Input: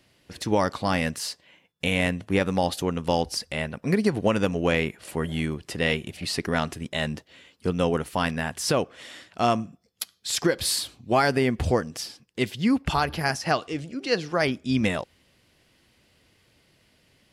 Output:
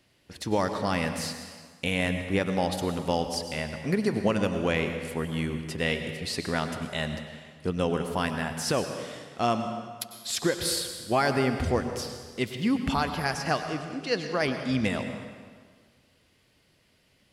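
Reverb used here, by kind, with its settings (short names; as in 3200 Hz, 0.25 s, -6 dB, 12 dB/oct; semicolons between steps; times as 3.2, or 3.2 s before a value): plate-style reverb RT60 1.7 s, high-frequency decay 0.8×, pre-delay 85 ms, DRR 7 dB; gain -3.5 dB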